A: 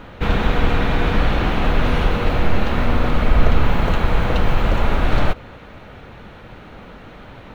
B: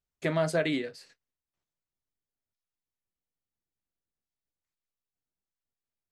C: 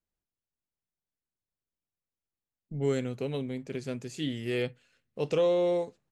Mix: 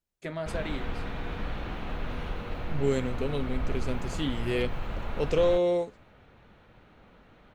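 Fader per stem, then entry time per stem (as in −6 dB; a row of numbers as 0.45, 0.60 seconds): −17.0, −7.5, +1.5 decibels; 0.25, 0.00, 0.00 seconds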